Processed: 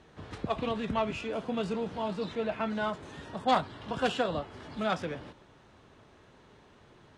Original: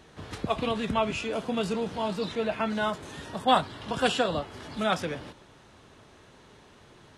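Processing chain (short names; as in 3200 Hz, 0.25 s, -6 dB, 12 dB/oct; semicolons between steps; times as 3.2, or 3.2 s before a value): self-modulated delay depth 0.078 ms; LPF 10000 Hz 24 dB/oct; high shelf 3900 Hz -8 dB; gain -3 dB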